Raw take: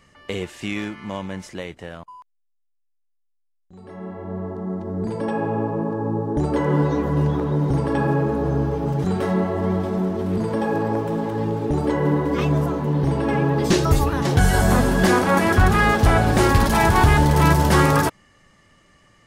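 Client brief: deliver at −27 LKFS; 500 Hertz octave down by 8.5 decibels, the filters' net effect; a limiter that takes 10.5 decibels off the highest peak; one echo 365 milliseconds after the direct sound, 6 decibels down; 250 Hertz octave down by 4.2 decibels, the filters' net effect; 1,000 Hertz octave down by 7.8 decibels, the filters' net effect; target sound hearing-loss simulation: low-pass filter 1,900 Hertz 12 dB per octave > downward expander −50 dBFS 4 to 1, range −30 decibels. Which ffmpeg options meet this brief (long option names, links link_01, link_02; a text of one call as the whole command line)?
ffmpeg -i in.wav -af "equalizer=frequency=250:width_type=o:gain=-3.5,equalizer=frequency=500:width_type=o:gain=-8.5,equalizer=frequency=1000:width_type=o:gain=-6.5,alimiter=limit=-15dB:level=0:latency=1,lowpass=1900,aecho=1:1:365:0.501,agate=range=-30dB:threshold=-50dB:ratio=4,volume=-1.5dB" out.wav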